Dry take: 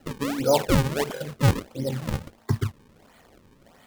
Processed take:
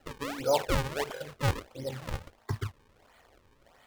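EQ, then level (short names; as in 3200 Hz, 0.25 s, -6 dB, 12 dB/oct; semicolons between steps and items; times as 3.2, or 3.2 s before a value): bell 200 Hz -12 dB 1.6 oct; high shelf 5400 Hz -6 dB; -3.0 dB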